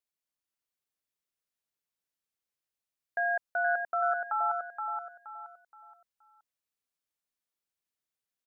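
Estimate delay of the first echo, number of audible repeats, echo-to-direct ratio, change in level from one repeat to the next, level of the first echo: 473 ms, 4, -4.5 dB, -9.5 dB, -5.0 dB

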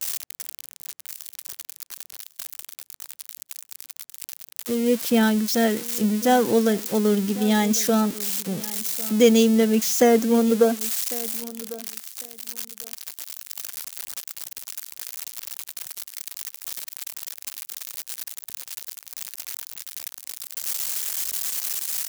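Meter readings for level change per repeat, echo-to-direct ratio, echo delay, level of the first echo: -15.5 dB, -18.5 dB, 1100 ms, -18.5 dB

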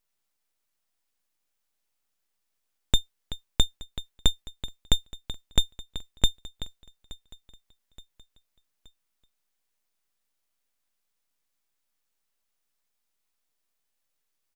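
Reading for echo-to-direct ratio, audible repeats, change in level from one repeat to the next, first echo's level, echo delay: -20.5 dB, 3, -6.5 dB, -21.5 dB, 873 ms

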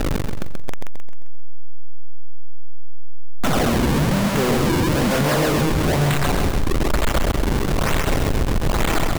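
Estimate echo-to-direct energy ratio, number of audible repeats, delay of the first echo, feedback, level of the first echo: -3.5 dB, 5, 132 ms, 45%, -4.5 dB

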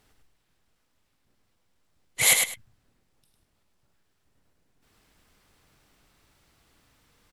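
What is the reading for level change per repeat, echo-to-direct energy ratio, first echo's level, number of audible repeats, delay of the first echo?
-14.0 dB, -5.0 dB, -5.0 dB, 2, 103 ms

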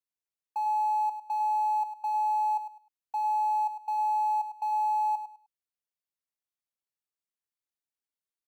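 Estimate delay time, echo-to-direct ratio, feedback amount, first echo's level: 102 ms, -10.0 dB, 24%, -10.0 dB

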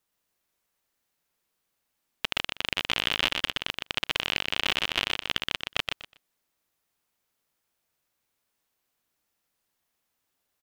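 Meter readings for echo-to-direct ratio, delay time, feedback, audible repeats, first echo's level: -4.0 dB, 122 ms, 20%, 3, -4.0 dB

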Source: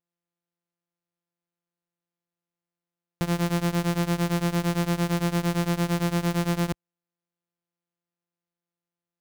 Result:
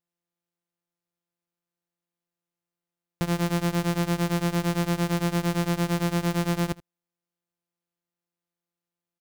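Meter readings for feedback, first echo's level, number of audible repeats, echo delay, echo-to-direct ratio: no regular repeats, -21.0 dB, 1, 78 ms, -21.0 dB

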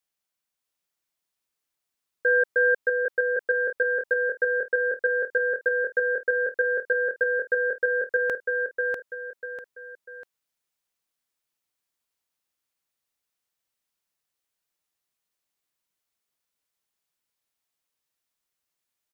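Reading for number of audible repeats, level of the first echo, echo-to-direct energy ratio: 3, -4.0 dB, -3.5 dB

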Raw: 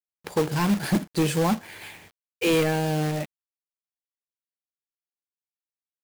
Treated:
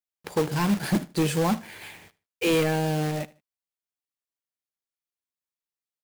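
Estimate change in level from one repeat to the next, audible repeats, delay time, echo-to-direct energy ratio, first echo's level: -11.5 dB, 2, 76 ms, -20.5 dB, -21.0 dB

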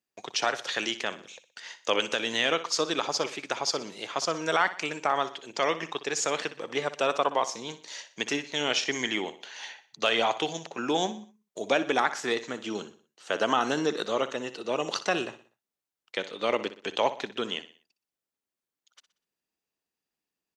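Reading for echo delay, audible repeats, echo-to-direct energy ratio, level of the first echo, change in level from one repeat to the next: 61 ms, 3, -13.0 dB, -14.0 dB, -7.5 dB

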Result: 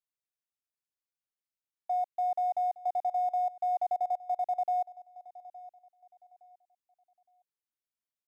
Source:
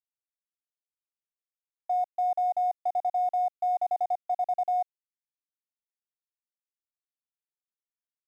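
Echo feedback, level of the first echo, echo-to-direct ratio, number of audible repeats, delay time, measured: 30%, -19.0 dB, -18.5 dB, 2, 865 ms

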